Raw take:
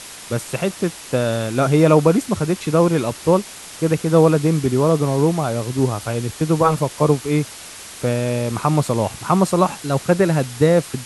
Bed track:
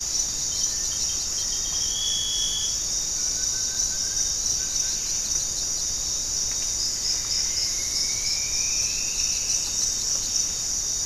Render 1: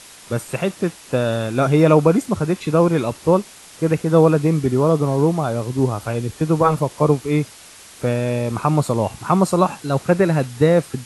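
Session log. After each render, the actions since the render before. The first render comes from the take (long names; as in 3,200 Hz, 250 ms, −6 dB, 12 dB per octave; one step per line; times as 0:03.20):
noise reduction from a noise print 6 dB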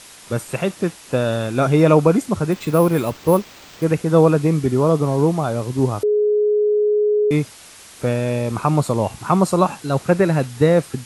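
0:02.52–0:03.84: bad sample-rate conversion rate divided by 4×, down none, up hold
0:06.03–0:07.31: beep over 419 Hz −13.5 dBFS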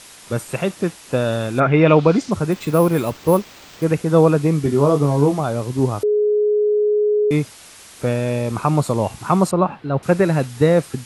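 0:01.59–0:02.30: low-pass with resonance 1,800 Hz → 5,900 Hz, resonance Q 2.3
0:04.63–0:05.40: double-tracking delay 21 ms −6 dB
0:09.51–0:10.03: high-frequency loss of the air 400 metres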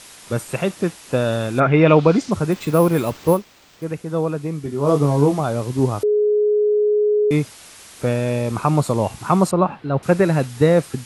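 0:03.32–0:04.89: duck −8.5 dB, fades 0.46 s exponential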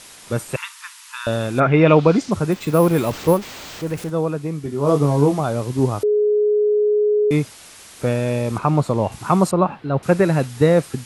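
0:00.56–0:01.27: linear-phase brick-wall high-pass 870 Hz
0:02.83–0:04.10: converter with a step at zero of −31 dBFS
0:08.58–0:09.12: low-pass filter 3,200 Hz 6 dB per octave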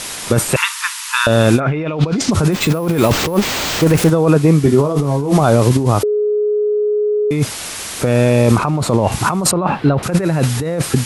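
compressor whose output falls as the input rises −24 dBFS, ratio −1
boost into a limiter +10 dB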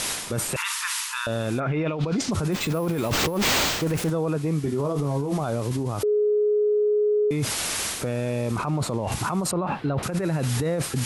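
reversed playback
downward compressor 12 to 1, threshold −19 dBFS, peak gain reduction 13 dB
reversed playback
brickwall limiter −17 dBFS, peak gain reduction 8.5 dB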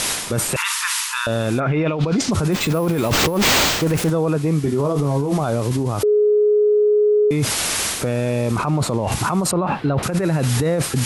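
level +6 dB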